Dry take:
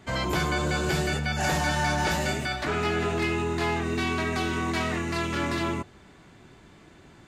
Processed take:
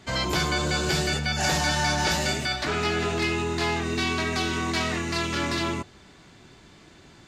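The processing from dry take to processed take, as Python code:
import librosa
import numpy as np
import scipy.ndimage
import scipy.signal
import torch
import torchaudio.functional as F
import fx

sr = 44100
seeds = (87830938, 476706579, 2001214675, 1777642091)

y = fx.peak_eq(x, sr, hz=4900.0, db=8.0, octaves=1.4)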